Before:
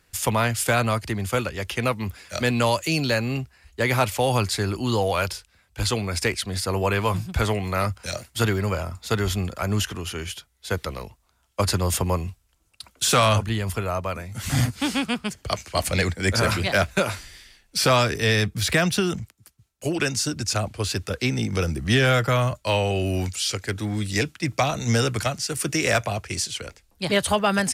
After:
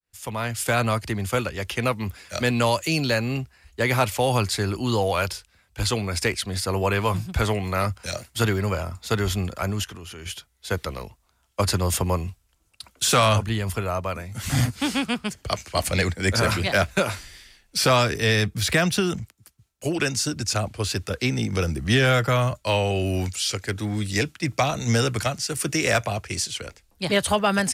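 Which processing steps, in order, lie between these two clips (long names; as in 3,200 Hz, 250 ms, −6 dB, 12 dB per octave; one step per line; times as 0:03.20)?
fade in at the beginning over 0.84 s
0:09.70–0:10.26: output level in coarse steps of 13 dB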